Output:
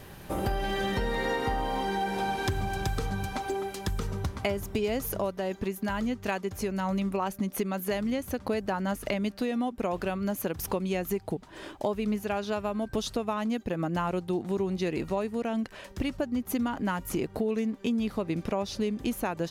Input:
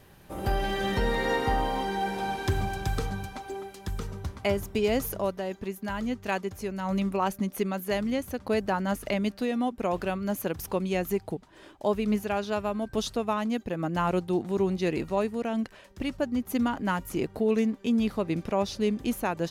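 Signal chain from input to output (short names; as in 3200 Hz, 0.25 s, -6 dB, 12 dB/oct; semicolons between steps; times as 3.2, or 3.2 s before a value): compressor 4:1, threshold -36 dBFS, peak gain reduction 13.5 dB; gain +8 dB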